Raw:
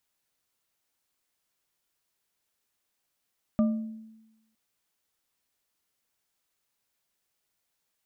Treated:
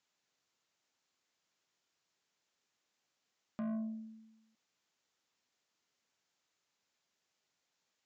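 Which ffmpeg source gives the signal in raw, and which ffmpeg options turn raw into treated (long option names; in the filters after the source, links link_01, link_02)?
-f lavfi -i "aevalsrc='0.119*pow(10,-3*t/1.03)*sin(2*PI*221*t)+0.0422*pow(10,-3*t/0.506)*sin(2*PI*609.3*t)+0.015*pow(10,-3*t/0.316)*sin(2*PI*1194.3*t)':duration=0.96:sample_rate=44100"
-af "highpass=120,alimiter=level_in=2.5dB:limit=-24dB:level=0:latency=1:release=13,volume=-2.5dB,aresample=16000,asoftclip=type=tanh:threshold=-35dB,aresample=44100"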